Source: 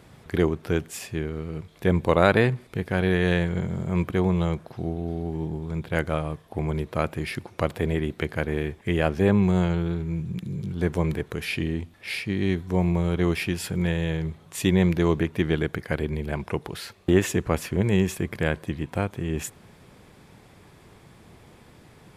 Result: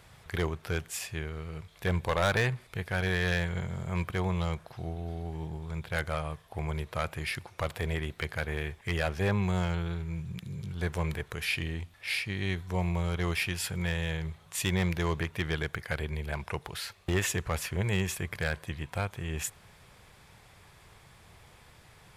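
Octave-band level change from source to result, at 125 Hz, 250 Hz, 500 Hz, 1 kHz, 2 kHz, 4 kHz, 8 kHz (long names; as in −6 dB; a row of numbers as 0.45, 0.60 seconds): −6.0, −11.0, −9.5, −5.0, −2.0, −1.0, 0.0 decibels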